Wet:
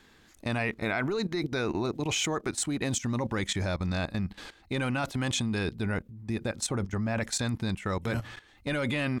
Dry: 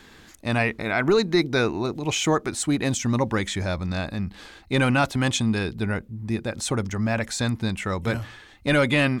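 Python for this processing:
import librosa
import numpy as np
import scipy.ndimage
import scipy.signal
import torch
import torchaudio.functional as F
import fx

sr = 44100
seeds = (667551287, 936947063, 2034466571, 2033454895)

y = fx.high_shelf(x, sr, hz=2200.0, db=-4.5, at=(6.65, 7.18), fade=0.02)
y = fx.level_steps(y, sr, step_db=15)
y = F.gain(torch.from_numpy(y), 1.0).numpy()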